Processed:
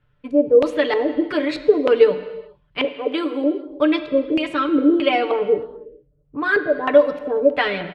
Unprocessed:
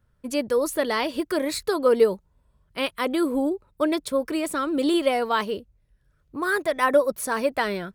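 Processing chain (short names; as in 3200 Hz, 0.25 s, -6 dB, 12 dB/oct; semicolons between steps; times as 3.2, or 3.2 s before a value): 2.84–3.68 HPF 300 Hz 24 dB/oct; 5.09–6.45 low-pass opened by the level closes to 830 Hz, open at -20.5 dBFS; comb 6.8 ms, depth 92%; LFO low-pass square 1.6 Hz 480–2900 Hz; reverb, pre-delay 3 ms, DRR 9.5 dB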